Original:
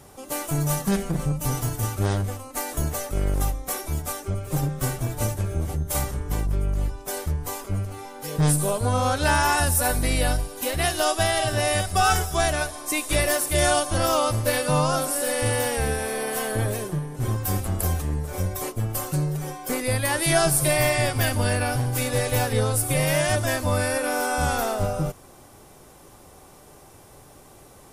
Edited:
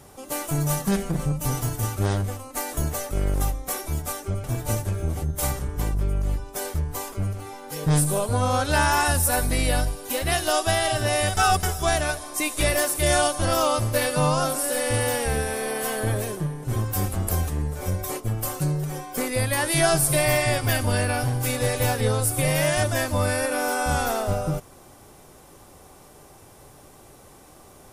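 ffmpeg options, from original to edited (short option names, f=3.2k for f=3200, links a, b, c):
-filter_complex "[0:a]asplit=4[a][b][c][d];[a]atrim=end=4.442[e];[b]atrim=start=4.958:end=11.892[f];[c]atrim=start=11.888:end=12.152,asetpts=PTS-STARTPTS,areverse[g];[d]atrim=start=12.148[h];[e][f]acrossfade=d=0.004:c1=hsin:c2=hsin[i];[i][g]acrossfade=d=0.004:c1=hsin:c2=hsin[j];[j][h]acrossfade=d=0.004:c1=hsin:c2=hsin"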